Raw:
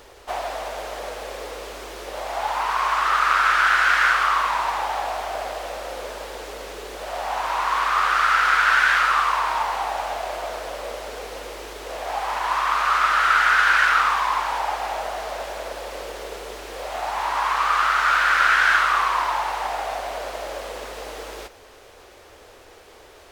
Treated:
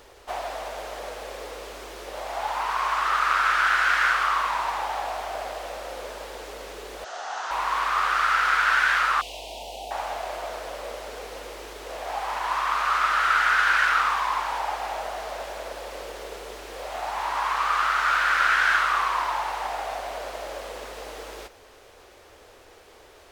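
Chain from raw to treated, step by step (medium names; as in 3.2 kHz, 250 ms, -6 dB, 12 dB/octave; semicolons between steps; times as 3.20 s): 7.04–7.51 s: cabinet simulation 450–7300 Hz, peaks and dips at 570 Hz -7 dB, 990 Hz -7 dB, 1.4 kHz +5 dB, 2.3 kHz -8 dB, 6.3 kHz +7 dB; 9.21–9.91 s: elliptic band-stop 680–2800 Hz, stop band 70 dB; trim -3.5 dB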